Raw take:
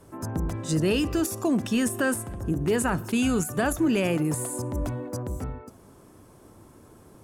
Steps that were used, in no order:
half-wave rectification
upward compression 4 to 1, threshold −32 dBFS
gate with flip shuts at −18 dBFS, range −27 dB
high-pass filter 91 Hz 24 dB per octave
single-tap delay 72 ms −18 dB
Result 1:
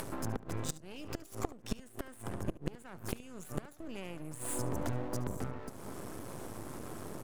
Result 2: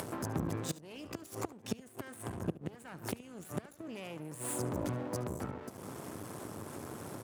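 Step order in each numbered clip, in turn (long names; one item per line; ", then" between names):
high-pass filter, then gate with flip, then upward compression, then half-wave rectification, then single-tap delay
gate with flip, then half-wave rectification, then single-tap delay, then upward compression, then high-pass filter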